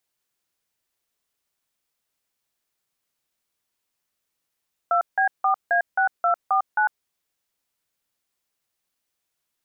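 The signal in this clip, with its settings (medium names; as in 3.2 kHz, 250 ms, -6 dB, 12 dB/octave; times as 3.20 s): DTMF "2B4A6249", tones 101 ms, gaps 165 ms, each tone -19.5 dBFS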